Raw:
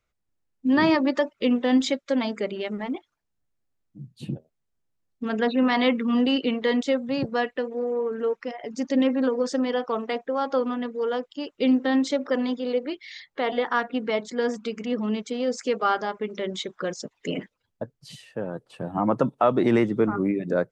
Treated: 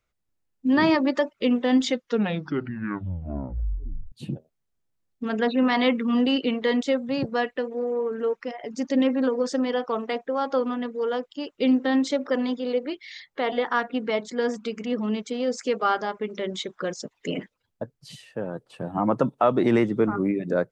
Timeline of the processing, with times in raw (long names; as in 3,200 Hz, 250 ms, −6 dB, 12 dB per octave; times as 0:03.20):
0:01.80: tape stop 2.32 s